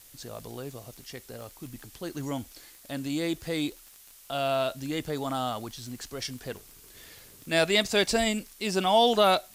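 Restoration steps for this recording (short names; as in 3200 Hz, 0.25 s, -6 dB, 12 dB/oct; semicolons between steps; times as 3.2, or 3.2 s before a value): de-click; noise print and reduce 19 dB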